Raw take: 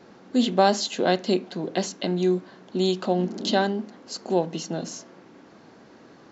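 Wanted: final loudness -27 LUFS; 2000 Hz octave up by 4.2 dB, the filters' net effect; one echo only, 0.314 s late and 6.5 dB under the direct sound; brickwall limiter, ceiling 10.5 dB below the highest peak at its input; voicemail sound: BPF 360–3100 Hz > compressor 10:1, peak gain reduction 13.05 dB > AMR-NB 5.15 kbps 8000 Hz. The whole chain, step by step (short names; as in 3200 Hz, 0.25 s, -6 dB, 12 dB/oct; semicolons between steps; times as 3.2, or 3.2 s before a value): bell 2000 Hz +6.5 dB; limiter -15.5 dBFS; BPF 360–3100 Hz; echo 0.314 s -6.5 dB; compressor 10:1, threshold -34 dBFS; gain +14 dB; AMR-NB 5.15 kbps 8000 Hz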